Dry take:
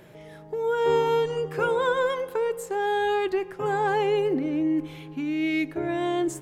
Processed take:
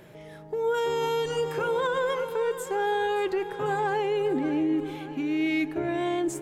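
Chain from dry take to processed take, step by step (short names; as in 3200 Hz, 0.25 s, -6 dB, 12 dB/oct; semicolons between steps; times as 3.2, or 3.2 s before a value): 0.74–1.52 high shelf 3100 Hz +11 dB; split-band echo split 330 Hz, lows 0.356 s, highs 0.571 s, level -14 dB; limiter -19 dBFS, peak gain reduction 8 dB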